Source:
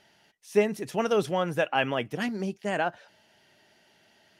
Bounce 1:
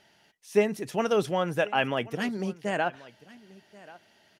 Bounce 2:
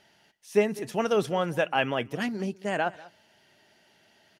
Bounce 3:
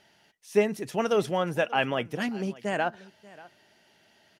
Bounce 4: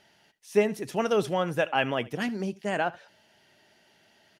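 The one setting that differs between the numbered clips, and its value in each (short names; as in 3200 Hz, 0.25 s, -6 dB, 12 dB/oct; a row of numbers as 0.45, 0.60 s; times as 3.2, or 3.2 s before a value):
echo, time: 1084, 196, 586, 76 ms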